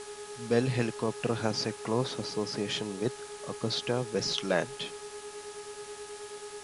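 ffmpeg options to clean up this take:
-af "bandreject=f=419.3:t=h:w=4,bandreject=f=838.6:t=h:w=4,bandreject=f=1.2579k:t=h:w=4,bandreject=f=1.6772k:t=h:w=4,bandreject=f=410:w=30,afwtdn=0.005"

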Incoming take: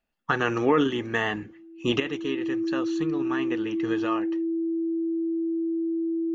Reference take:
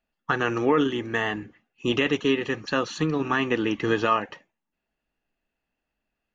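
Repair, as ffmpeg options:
-af "bandreject=f=330:w=30,asetnsamples=n=441:p=0,asendcmd='2 volume volume 8dB',volume=0dB"

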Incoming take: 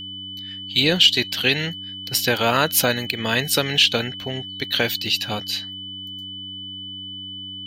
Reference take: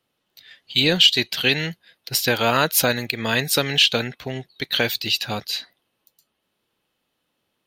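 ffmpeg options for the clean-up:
-af "bandreject=f=96:t=h:w=4,bandreject=f=192:t=h:w=4,bandreject=f=288:t=h:w=4,bandreject=f=3k:w=30"

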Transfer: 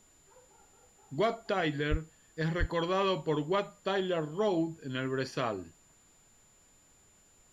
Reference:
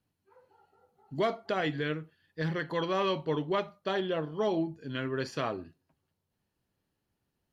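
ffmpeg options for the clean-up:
-filter_complex "[0:a]bandreject=f=7.1k:w=30,asplit=3[a][b][c];[a]afade=t=out:st=1.9:d=0.02[d];[b]highpass=f=140:w=0.5412,highpass=f=140:w=1.3066,afade=t=in:st=1.9:d=0.02,afade=t=out:st=2.02:d=0.02[e];[c]afade=t=in:st=2.02:d=0.02[f];[d][e][f]amix=inputs=3:normalize=0,asplit=3[g][h][i];[g]afade=t=out:st=2.59:d=0.02[j];[h]highpass=f=140:w=0.5412,highpass=f=140:w=1.3066,afade=t=in:st=2.59:d=0.02,afade=t=out:st=2.71:d=0.02[k];[i]afade=t=in:st=2.71:d=0.02[l];[j][k][l]amix=inputs=3:normalize=0,agate=range=-21dB:threshold=-55dB"

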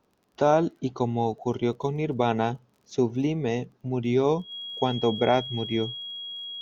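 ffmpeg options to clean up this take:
-af "adeclick=t=4,bandreject=f=3.3k:w=30"

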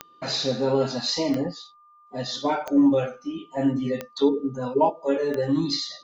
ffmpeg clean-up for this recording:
-af "adeclick=t=4,bandreject=f=1.2k:w=30"

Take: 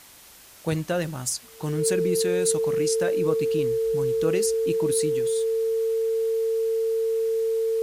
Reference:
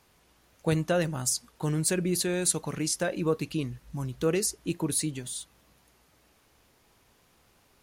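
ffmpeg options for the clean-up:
-af "bandreject=f=450:w=30,afftdn=nr=17:nf=-48"

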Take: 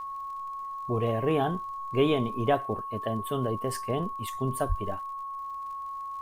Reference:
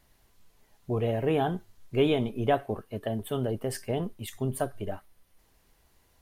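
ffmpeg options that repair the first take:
-filter_complex "[0:a]adeclick=t=4,bandreject=f=1.1k:w=30,asplit=3[a][b][c];[a]afade=t=out:st=4.68:d=0.02[d];[b]highpass=f=140:w=0.5412,highpass=f=140:w=1.3066,afade=t=in:st=4.68:d=0.02,afade=t=out:st=4.8:d=0.02[e];[c]afade=t=in:st=4.8:d=0.02[f];[d][e][f]amix=inputs=3:normalize=0"

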